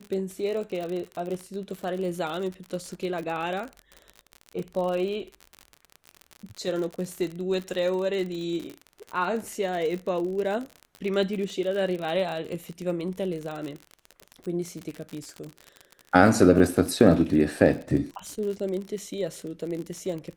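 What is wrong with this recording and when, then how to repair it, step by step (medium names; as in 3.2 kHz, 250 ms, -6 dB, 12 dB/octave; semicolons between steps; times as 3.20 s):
crackle 50 per s -31 dBFS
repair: de-click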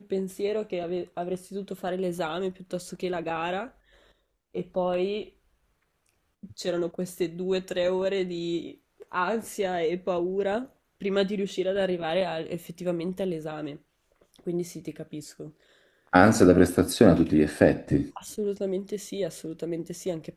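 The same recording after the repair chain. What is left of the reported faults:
nothing left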